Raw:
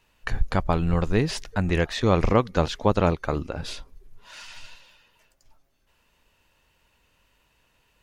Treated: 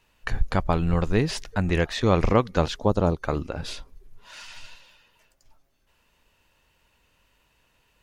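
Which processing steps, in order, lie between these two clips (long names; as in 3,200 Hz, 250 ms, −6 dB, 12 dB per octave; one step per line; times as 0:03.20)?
0:02.76–0:03.22: parametric band 2,200 Hz −15 dB 1.2 octaves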